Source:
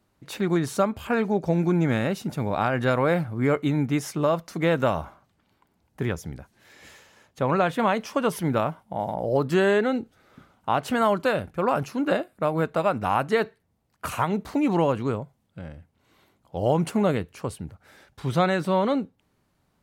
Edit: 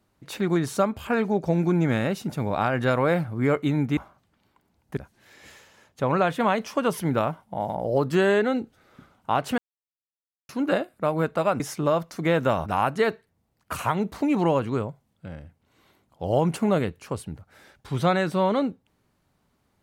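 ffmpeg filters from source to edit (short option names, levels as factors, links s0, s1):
-filter_complex "[0:a]asplit=7[s0][s1][s2][s3][s4][s5][s6];[s0]atrim=end=3.972[s7];[s1]atrim=start=5.028:end=6.032[s8];[s2]atrim=start=6.358:end=10.97,asetpts=PTS-STARTPTS,afade=t=out:st=4.608:d=0.004:c=hsin[s9];[s3]atrim=start=10.97:end=11.88,asetpts=PTS-STARTPTS,volume=0[s10];[s4]atrim=start=11.88:end=12.992,asetpts=PTS-STARTPTS,afade=t=in:d=0.004:c=hsin[s11];[s5]atrim=start=3.968:end=5.032[s12];[s6]atrim=start=12.988[s13];[s7][s8]acrossfade=d=0.004:c1=hsin:c2=hsin[s14];[s9][s10][s11]concat=n=3:v=0:a=1[s15];[s14][s15]acrossfade=d=0.004:c1=hsin:c2=hsin[s16];[s16][s12]acrossfade=d=0.004:c1=hsin:c2=hsin[s17];[s17][s13]acrossfade=d=0.004:c1=hsin:c2=hsin"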